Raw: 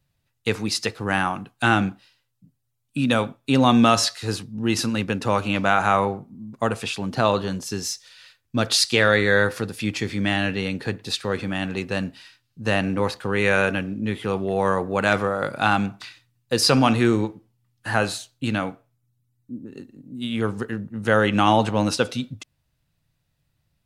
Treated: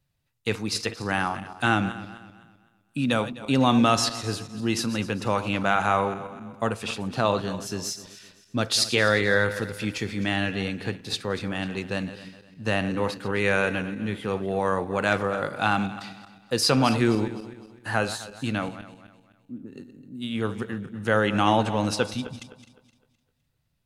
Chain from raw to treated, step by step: backward echo that repeats 128 ms, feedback 57%, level -13 dB; trim -3.5 dB

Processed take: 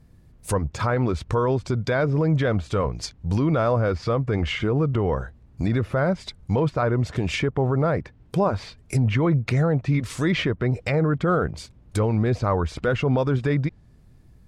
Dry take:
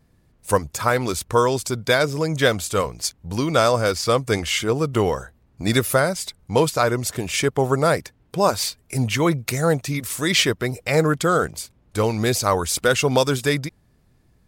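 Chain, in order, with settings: low-pass that closes with the level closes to 1.8 kHz, closed at -18.5 dBFS; bass shelf 230 Hz +9 dB; peak limiter -12.5 dBFS, peak gain reduction 10 dB

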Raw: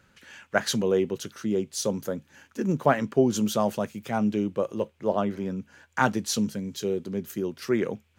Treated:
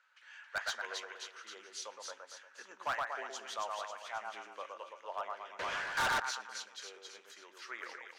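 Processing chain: ladder high-pass 820 Hz, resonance 25%; two-band feedback delay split 2 kHz, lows 117 ms, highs 271 ms, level -3.5 dB; 5.59–6.20 s: power-law waveshaper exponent 0.5; distance through air 90 m; on a send at -19.5 dB: reverberation RT60 0.60 s, pre-delay 3 ms; on the sum: hard clipper -28 dBFS, distortion -7 dB; trim -1.5 dB

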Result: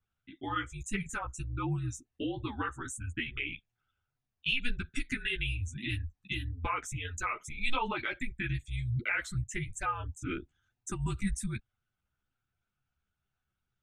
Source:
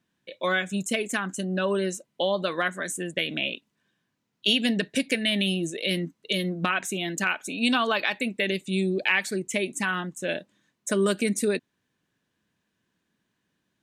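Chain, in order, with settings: resonances exaggerated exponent 1.5; frequency shift -250 Hz; chorus voices 4, 1.1 Hz, delay 12 ms, depth 4 ms; trim -5.5 dB

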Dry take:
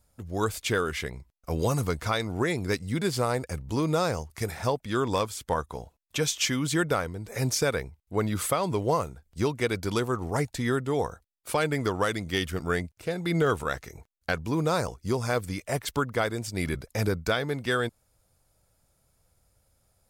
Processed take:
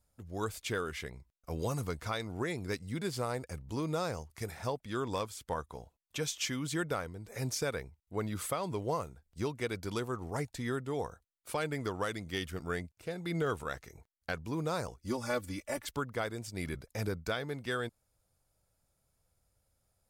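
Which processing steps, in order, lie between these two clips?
15.03–15.87 s: comb 3.5 ms, depth 90%; trim -8.5 dB

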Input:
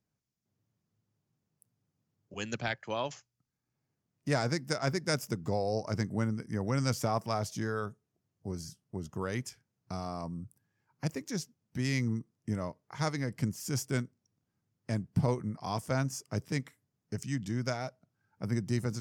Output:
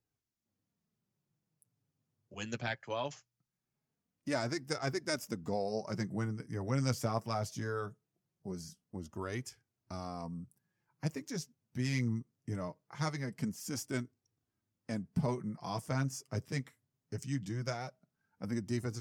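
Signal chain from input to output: flange 0.21 Hz, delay 2.3 ms, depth 6.3 ms, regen -26%

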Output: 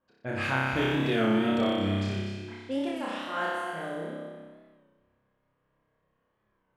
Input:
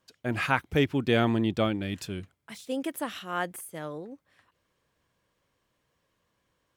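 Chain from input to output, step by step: flange 1.3 Hz, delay 3.1 ms, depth 8.8 ms, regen +42%; level-controlled noise filter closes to 1.6 kHz, open at -28 dBFS; on a send: flutter echo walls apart 5.2 m, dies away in 1.4 s; on the sum: reverberation RT60 0.40 s, pre-delay 208 ms, DRR 6.5 dB; in parallel at +0.5 dB: peak limiter -21 dBFS, peak gain reduction 11.5 dB; on the sum: warped record 33 1/3 rpm, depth 100 cents; trim -6.5 dB

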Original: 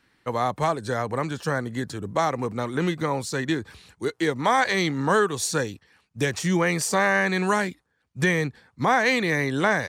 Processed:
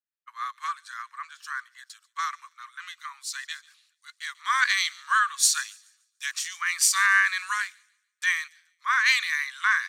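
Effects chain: Chebyshev high-pass 1.1 kHz, order 6; feedback echo behind a high-pass 144 ms, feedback 66%, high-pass 3 kHz, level -17 dB; three bands expanded up and down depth 100%

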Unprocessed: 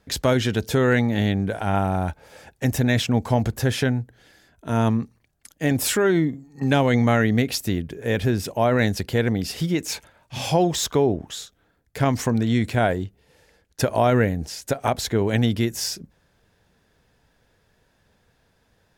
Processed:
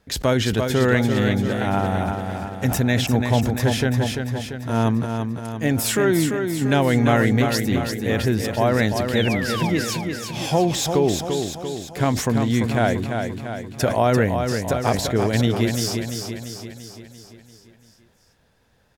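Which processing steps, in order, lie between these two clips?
painted sound fall, 9.15–9.70 s, 780–3900 Hz -30 dBFS; feedback delay 342 ms, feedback 56%, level -6 dB; decay stretcher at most 83 dB/s

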